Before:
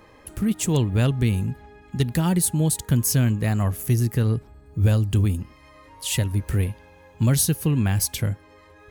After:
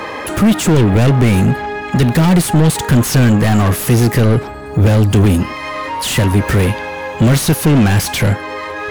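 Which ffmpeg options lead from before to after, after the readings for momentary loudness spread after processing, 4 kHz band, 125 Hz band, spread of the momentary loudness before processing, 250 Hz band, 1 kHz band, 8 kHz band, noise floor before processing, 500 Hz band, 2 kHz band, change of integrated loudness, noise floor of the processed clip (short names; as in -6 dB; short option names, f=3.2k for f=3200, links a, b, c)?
10 LU, +10.5 dB, +9.0 dB, 11 LU, +12.0 dB, +17.0 dB, +4.0 dB, -51 dBFS, +14.0 dB, +15.5 dB, +9.5 dB, -26 dBFS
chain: -filter_complex "[0:a]asplit=2[a][b];[b]highpass=f=720:p=1,volume=31dB,asoftclip=type=tanh:threshold=-8.5dB[c];[a][c]amix=inputs=2:normalize=0,lowpass=f=2.8k:p=1,volume=-6dB,acrossover=split=350[d][e];[e]asoftclip=type=tanh:threshold=-23dB[f];[d][f]amix=inputs=2:normalize=0,volume=7dB"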